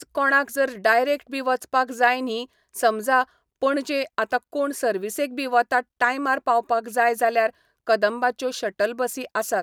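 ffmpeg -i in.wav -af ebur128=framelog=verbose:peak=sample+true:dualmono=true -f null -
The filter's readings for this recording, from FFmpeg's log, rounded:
Integrated loudness:
  I:         -19.8 LUFS
  Threshold: -29.9 LUFS
Loudness range:
  LRA:         2.0 LU
  Threshold: -40.0 LUFS
  LRA low:   -21.1 LUFS
  LRA high:  -19.1 LUFS
Sample peak:
  Peak:       -5.3 dBFS
True peak:
  Peak:       -5.3 dBFS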